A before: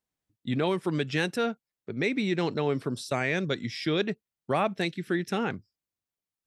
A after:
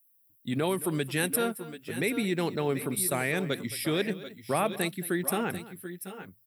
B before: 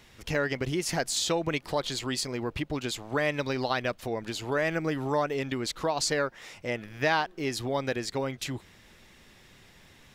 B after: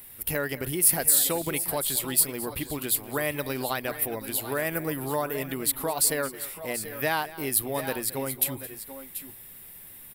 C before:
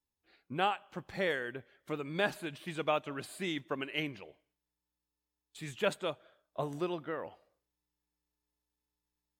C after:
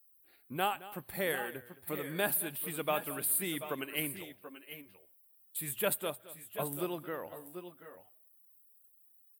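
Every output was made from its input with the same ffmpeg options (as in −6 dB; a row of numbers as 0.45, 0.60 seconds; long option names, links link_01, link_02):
-af "bandreject=frequency=60:width_type=h:width=6,bandreject=frequency=120:width_type=h:width=6,aexciter=amount=14.3:drive=9.2:freq=9500,aecho=1:1:219|733|744:0.133|0.188|0.188,volume=-1.5dB"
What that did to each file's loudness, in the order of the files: −0.5, +4.0, +1.0 LU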